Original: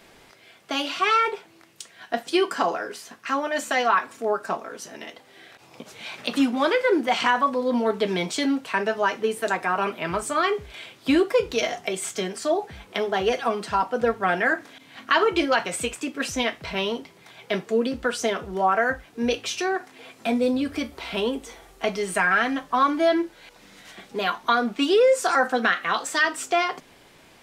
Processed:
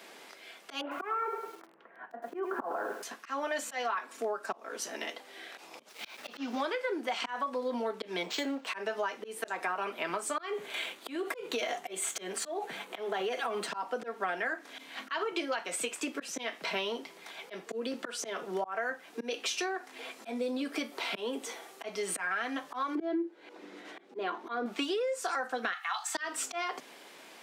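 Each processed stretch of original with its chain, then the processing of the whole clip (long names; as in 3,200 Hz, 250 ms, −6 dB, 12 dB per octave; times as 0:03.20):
0:00.81–0:03.03: low-pass filter 1,500 Hz 24 dB per octave + feedback echo at a low word length 102 ms, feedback 35%, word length 8 bits, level −9 dB
0:05.89–0:06.61: variable-slope delta modulation 32 kbit/s + centre clipping without the shift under −43 dBFS
0:08.23–0:08.67: amplitude modulation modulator 280 Hz, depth 50% + linearly interpolated sample-rate reduction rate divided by 4×
0:10.53–0:13.67: parametric band 5,200 Hz −10 dB 0.3 octaves + downward compressor 8 to 1, threshold −24 dBFS + leveller curve on the samples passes 1
0:22.95–0:24.66: low-pass filter 1,500 Hz 6 dB per octave + parametric band 340 Hz +14 dB 0.64 octaves
0:25.73–0:26.15: Chebyshev band-stop filter 120–710 Hz, order 5 + comb filter 2.3 ms, depth 38%
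whole clip: volume swells 294 ms; Bessel high-pass filter 330 Hz, order 8; downward compressor 8 to 1, threshold −32 dBFS; level +1.5 dB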